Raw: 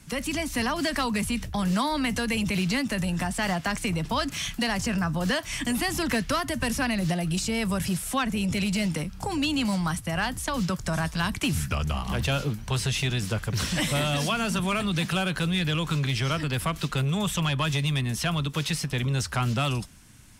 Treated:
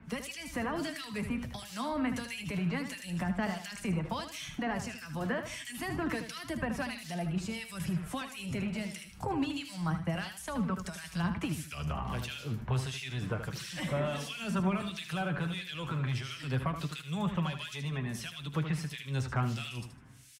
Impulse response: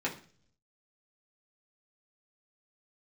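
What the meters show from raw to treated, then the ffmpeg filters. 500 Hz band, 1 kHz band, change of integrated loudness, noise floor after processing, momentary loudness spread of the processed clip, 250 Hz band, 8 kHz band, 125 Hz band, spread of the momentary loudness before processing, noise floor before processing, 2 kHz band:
-7.5 dB, -8.5 dB, -8.5 dB, -48 dBFS, 6 LU, -7.5 dB, -12.5 dB, -7.5 dB, 3 LU, -41 dBFS, -9.5 dB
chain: -filter_complex "[0:a]asplit=2[a][b];[b]alimiter=level_in=1.5dB:limit=-24dB:level=0:latency=1,volume=-1.5dB,volume=-3dB[c];[a][c]amix=inputs=2:normalize=0,acrossover=split=2100[d][e];[d]aeval=exprs='val(0)*(1-1/2+1/2*cos(2*PI*1.5*n/s))':c=same[f];[e]aeval=exprs='val(0)*(1-1/2-1/2*cos(2*PI*1.5*n/s))':c=same[g];[f][g]amix=inputs=2:normalize=0,acrossover=split=610|2200[h][i][j];[h]acompressor=threshold=-27dB:ratio=4[k];[i]acompressor=threshold=-33dB:ratio=4[l];[j]acompressor=threshold=-42dB:ratio=4[m];[k][l][m]amix=inputs=3:normalize=0,asplit=2[n][o];[o]aecho=0:1:77|154|231:0.355|0.106|0.0319[p];[n][p]amix=inputs=2:normalize=0,flanger=delay=4.4:depth=4.2:regen=44:speed=0.28:shape=triangular,highpass=52"

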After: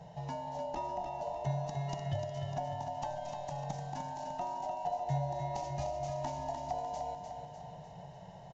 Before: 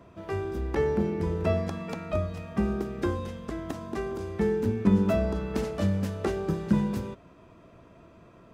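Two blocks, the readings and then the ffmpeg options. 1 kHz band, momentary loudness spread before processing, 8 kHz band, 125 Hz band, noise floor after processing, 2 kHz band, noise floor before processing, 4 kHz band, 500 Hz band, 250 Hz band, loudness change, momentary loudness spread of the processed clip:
+3.0 dB, 10 LU, n/a, -8.0 dB, -51 dBFS, -13.5 dB, -54 dBFS, -4.5 dB, -10.0 dB, -19.0 dB, -9.5 dB, 10 LU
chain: -filter_complex "[0:a]afftfilt=real='real(if(lt(b,1008),b+24*(1-2*mod(floor(b/24),2)),b),0)':imag='imag(if(lt(b,1008),b+24*(1-2*mod(floor(b/24),2)),b),0)':win_size=2048:overlap=0.75,aresample=16000,aresample=44100,acompressor=threshold=-41dB:ratio=2.5,equalizer=f=160:t=o:w=0.67:g=10,equalizer=f=1.6k:t=o:w=0.67:g=-11,equalizer=f=6.3k:t=o:w=0.67:g=9,asplit=2[a][b];[b]aecho=0:1:300|600|900|1200|1500|1800|2100:0.473|0.256|0.138|0.0745|0.0402|0.0217|0.0117[c];[a][c]amix=inputs=2:normalize=0"

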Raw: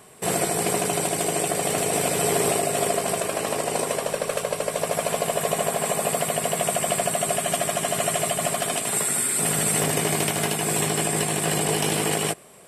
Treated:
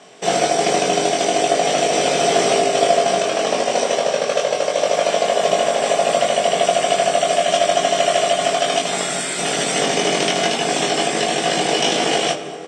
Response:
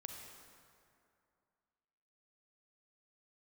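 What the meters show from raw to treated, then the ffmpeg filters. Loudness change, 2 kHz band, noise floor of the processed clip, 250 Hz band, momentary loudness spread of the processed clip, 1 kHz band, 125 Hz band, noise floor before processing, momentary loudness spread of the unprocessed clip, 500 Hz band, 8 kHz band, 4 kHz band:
+5.5 dB, +6.5 dB, -25 dBFS, +3.5 dB, 3 LU, +9.0 dB, -3.5 dB, -32 dBFS, 4 LU, +8.5 dB, -0.5 dB, +10.0 dB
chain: -filter_complex "[0:a]highpass=f=200:w=0.5412,highpass=f=200:w=1.3066,equalizer=f=220:t=q:w=4:g=-7,equalizer=f=380:t=q:w=4:g=-4,equalizer=f=700:t=q:w=4:g=5,equalizer=f=1k:t=q:w=4:g=-5,equalizer=f=3.3k:t=q:w=4:g=6,equalizer=f=5.9k:t=q:w=4:g=9,lowpass=f=6.4k:w=0.5412,lowpass=f=6.4k:w=1.3066,asplit=2[a][b];[b]adelay=22,volume=-3dB[c];[a][c]amix=inputs=2:normalize=0,asplit=2[d][e];[1:a]atrim=start_sample=2205,lowshelf=f=420:g=10.5[f];[e][f]afir=irnorm=-1:irlink=0,volume=0.5dB[g];[d][g]amix=inputs=2:normalize=0"

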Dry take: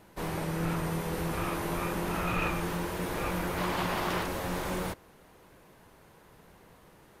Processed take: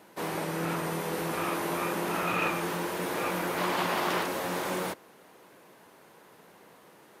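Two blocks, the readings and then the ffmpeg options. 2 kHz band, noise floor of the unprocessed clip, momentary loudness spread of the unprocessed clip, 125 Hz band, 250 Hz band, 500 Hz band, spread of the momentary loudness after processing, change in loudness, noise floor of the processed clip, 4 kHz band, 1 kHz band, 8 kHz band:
+3.0 dB, -58 dBFS, 4 LU, -4.5 dB, 0.0 dB, +2.5 dB, 5 LU, +1.5 dB, -56 dBFS, +3.0 dB, +3.0 dB, +3.0 dB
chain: -af "highpass=230,volume=3dB"

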